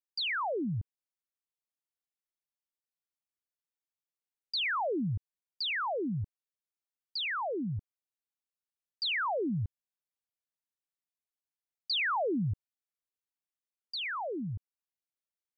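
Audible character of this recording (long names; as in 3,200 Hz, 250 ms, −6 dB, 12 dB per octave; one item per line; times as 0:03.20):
background noise floor −95 dBFS
spectral slope −3.0 dB per octave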